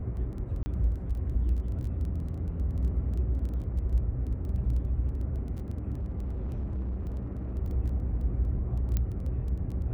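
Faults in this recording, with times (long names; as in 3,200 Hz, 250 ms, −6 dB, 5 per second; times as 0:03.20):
surface crackle 12 per second −37 dBFS
0:00.63–0:00.66: drop-out 30 ms
0:05.95–0:07.54: clipping −29.5 dBFS
0:08.97: click −16 dBFS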